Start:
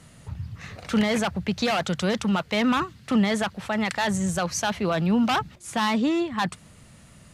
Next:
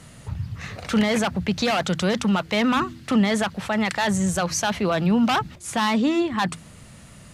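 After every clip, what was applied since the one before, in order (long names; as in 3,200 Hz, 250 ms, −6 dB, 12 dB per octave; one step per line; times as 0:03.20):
hum removal 81.98 Hz, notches 4
in parallel at −2 dB: brickwall limiter −23.5 dBFS, peak gain reduction 11.5 dB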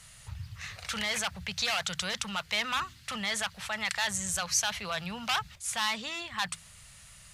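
guitar amp tone stack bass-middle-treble 10-0-10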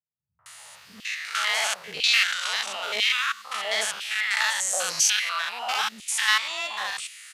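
spectrum averaged block by block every 100 ms
three-band delay without the direct sound lows, mids, highs 390/460 ms, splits 220/890 Hz
auto-filter high-pass saw down 1 Hz 320–3,000 Hz
level +9 dB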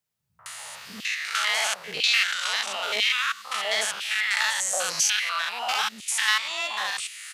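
multiband upward and downward compressor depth 40%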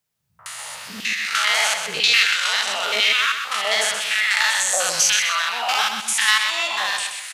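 repeating echo 127 ms, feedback 39%, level −7 dB
level +5 dB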